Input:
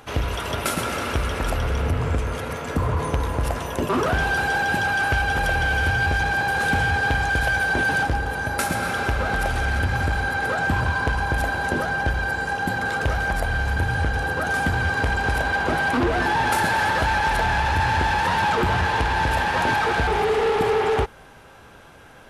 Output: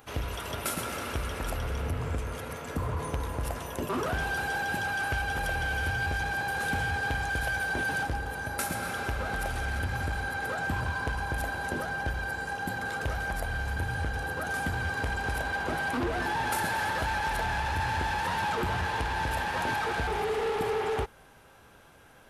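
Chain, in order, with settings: high shelf 11000 Hz +12 dB; gain -9 dB

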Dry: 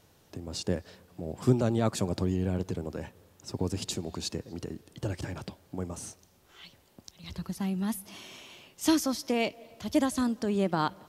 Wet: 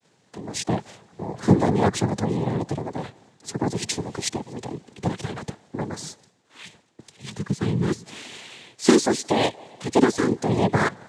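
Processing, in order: expander -56 dBFS; noise vocoder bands 6; gain +7.5 dB

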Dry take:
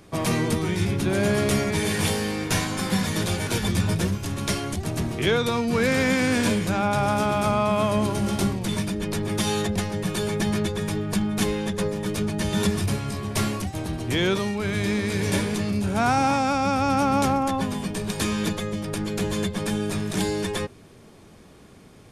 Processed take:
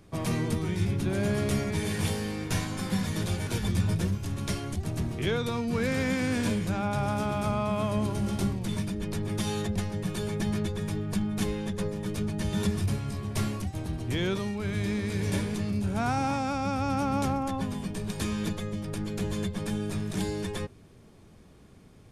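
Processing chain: low shelf 180 Hz +8.5 dB; gain -8.5 dB

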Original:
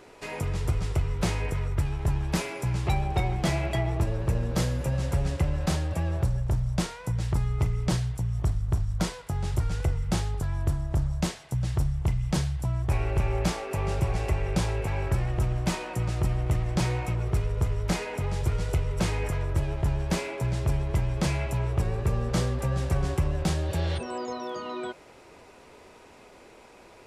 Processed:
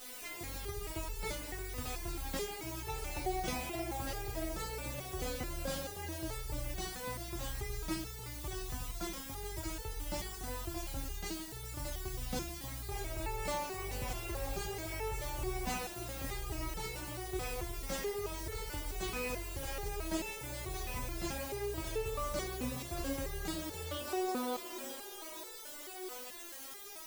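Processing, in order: split-band echo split 340 Hz, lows 82 ms, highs 0.625 s, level -5 dB; added noise white -40 dBFS; stepped resonator 4.6 Hz 250–440 Hz; gain +6 dB

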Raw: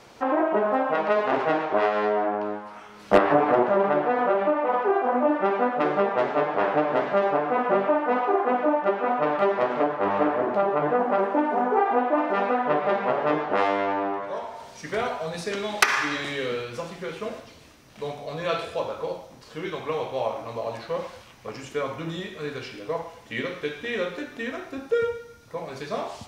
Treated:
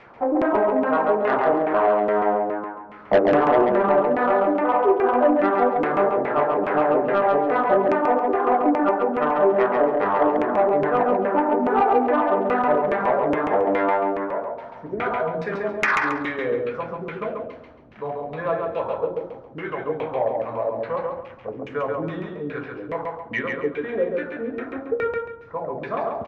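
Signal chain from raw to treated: LFO low-pass saw down 2.4 Hz 240–2400 Hz; soft clip -10 dBFS, distortion -16 dB; feedback echo 0.137 s, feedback 28%, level -3.5 dB

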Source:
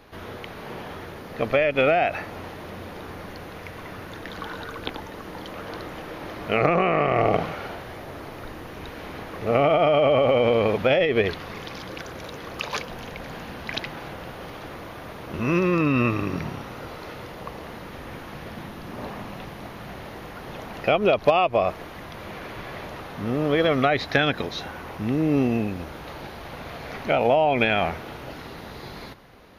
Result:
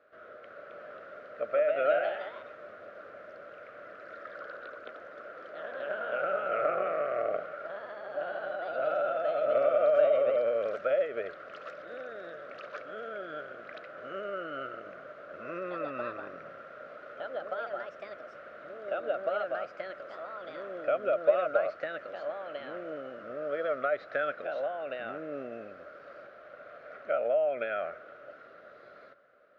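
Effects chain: echoes that change speed 0.315 s, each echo +2 st, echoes 3; double band-pass 900 Hz, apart 1.2 oct; gain -3 dB

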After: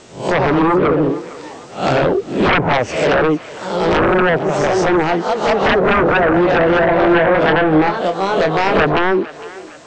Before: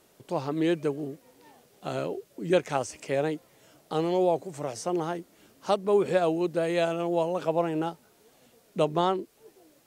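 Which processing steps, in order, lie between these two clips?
spectral swells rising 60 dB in 0.36 s; echoes that change speed 0.108 s, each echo +1 st, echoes 3, each echo -6 dB; treble ducked by the level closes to 690 Hz, closed at -19.5 dBFS; 2.03–2.75 low shelf 140 Hz +9 dB; sine folder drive 13 dB, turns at -11.5 dBFS; Chebyshev low-pass 8100 Hz, order 6; 6.91–8.85 doubler 26 ms -6.5 dB; on a send: thinning echo 0.456 s, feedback 51%, high-pass 550 Hz, level -17 dB; on the sum: gain +2.5 dB

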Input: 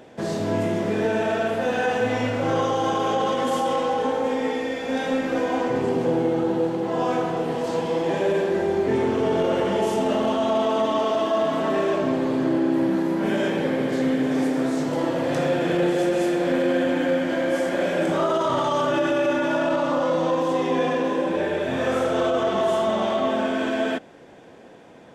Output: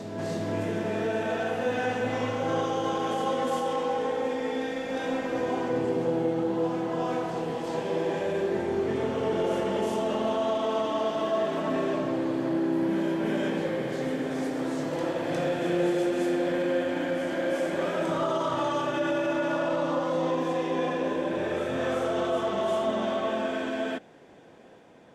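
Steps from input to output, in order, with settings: reverse echo 0.358 s -5.5 dB; gain -6.5 dB

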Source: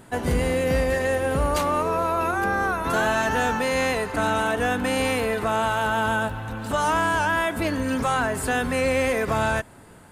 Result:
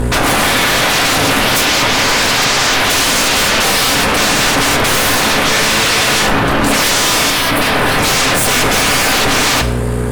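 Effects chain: buzz 60 Hz, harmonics 4, -35 dBFS -4 dB/oct; in parallel at +1 dB: limiter -21 dBFS, peak gain reduction 8 dB; on the sum: sine folder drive 16 dB, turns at -9.5 dBFS; 7.3–7.98 bell 6800 Hz -9 dB 0.69 oct; on a send at -5 dB: reverb RT60 0.95 s, pre-delay 4 ms; on the sum: gain -1 dB

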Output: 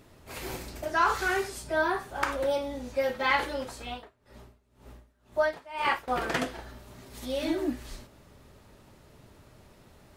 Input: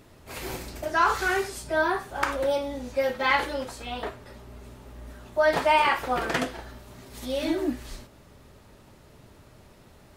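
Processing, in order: 3.9–6.08 dB-linear tremolo 2 Hz, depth 24 dB; gain -2.5 dB

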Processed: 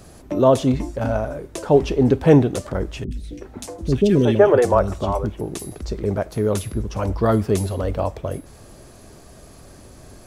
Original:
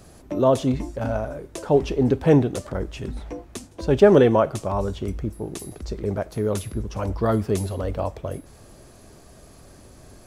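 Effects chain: 3.04–5.41 three bands offset in time lows, highs, mids 70/370 ms, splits 370/2300 Hz; gain +3.5 dB

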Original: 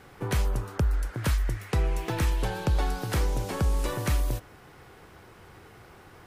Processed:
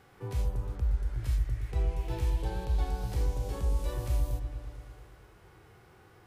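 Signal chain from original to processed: harmonic-percussive split percussive -16 dB; dynamic EQ 1400 Hz, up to -7 dB, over -54 dBFS, Q 1.2; repeats that get brighter 0.113 s, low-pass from 400 Hz, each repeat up 1 oct, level -6 dB; gain -4 dB

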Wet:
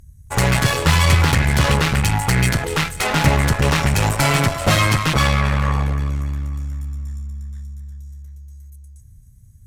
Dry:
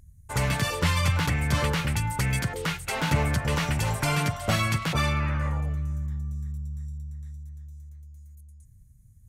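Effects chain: split-band echo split 650 Hz, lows 92 ms, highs 0.26 s, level -14.5 dB; speed mistake 25 fps video run at 24 fps; added harmonics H 8 -18 dB, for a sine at -11 dBFS; gain +8 dB

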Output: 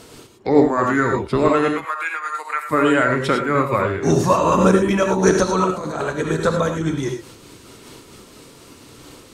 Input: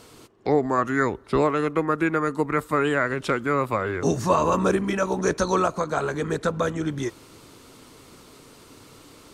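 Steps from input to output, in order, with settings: bin magnitudes rounded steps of 15 dB; 1.73–2.69 Bessel high-pass 1200 Hz, order 4; 5.64–6.07 negative-ratio compressor -30 dBFS, ratio -1; non-linear reverb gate 0.13 s rising, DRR 2.5 dB; noise-modulated level, depth 60%; gain +7.5 dB

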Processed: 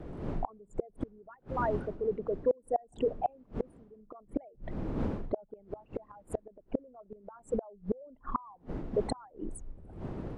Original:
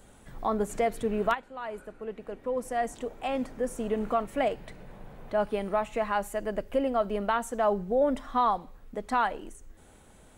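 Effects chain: formant sharpening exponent 3; wind noise 320 Hz -44 dBFS; flipped gate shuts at -24 dBFS, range -32 dB; gain +6 dB

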